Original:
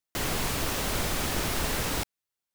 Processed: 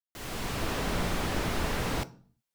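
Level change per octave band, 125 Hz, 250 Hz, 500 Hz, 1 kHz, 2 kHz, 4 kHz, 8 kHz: 0.0, +0.5, −0.5, −1.0, −2.5, −5.0, −8.5 decibels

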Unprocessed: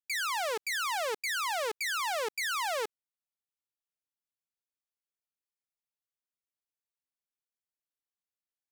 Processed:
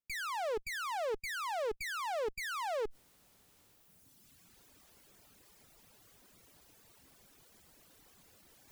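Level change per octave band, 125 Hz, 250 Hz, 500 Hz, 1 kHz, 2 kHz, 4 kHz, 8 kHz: can't be measured, +2.5 dB, −1.0 dB, −4.5 dB, −7.0 dB, −9.5 dB, −10.0 dB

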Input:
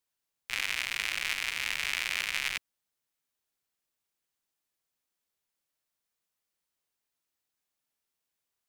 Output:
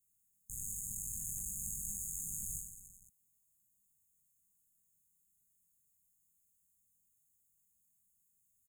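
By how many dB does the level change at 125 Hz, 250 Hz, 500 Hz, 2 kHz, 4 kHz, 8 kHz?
+6.0 dB, +0.5 dB, below −35 dB, below −40 dB, below −40 dB, +3.0 dB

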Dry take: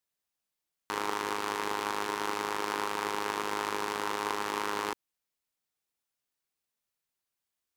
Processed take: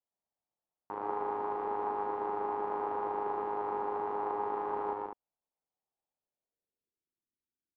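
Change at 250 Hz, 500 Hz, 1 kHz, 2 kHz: −4.5, +1.5, −0.5, −15.0 decibels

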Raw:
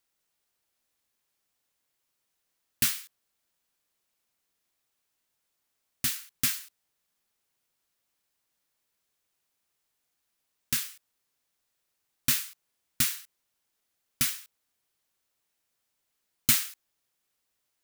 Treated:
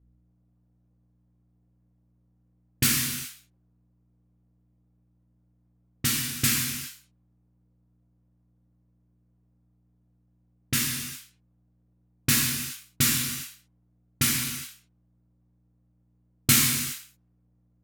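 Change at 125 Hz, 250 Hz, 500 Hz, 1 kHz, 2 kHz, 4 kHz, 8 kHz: +12.5, +11.5, +12.5, +8.0, +7.0, +6.0, +6.0 decibels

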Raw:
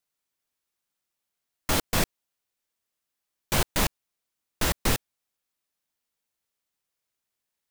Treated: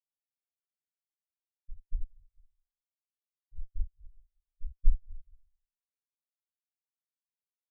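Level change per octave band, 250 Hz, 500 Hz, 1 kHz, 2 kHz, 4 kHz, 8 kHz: −38.5 dB, below −40 dB, below −40 dB, below −40 dB, below −40 dB, below −40 dB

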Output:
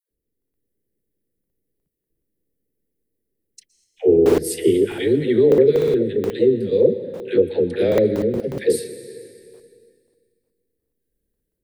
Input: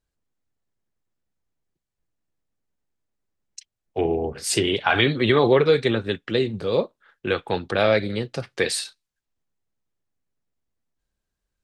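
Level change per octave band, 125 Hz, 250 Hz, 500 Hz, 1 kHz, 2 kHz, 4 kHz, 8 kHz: −0.5, +5.5, +6.0, −11.0, −10.0, −10.0, −2.5 decibels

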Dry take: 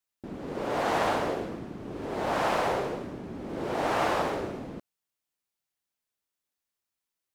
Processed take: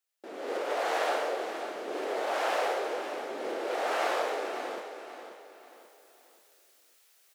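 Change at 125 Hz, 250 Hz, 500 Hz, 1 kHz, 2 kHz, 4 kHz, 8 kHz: below −25 dB, −8.5 dB, −0.5 dB, −2.0 dB, 0.0 dB, +0.5 dB, +0.5 dB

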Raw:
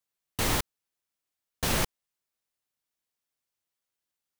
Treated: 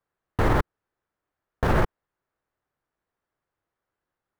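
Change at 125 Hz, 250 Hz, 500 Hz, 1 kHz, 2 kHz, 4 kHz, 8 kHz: +9.0, +7.0, +8.5, +7.5, +3.0, −9.5, −16.5 decibels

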